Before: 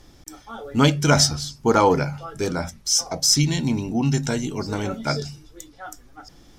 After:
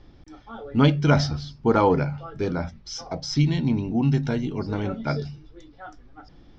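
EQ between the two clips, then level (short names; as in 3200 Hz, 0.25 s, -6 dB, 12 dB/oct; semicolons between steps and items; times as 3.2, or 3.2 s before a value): LPF 4900 Hz 24 dB/oct; air absorption 91 m; low shelf 450 Hz +5 dB; -4.0 dB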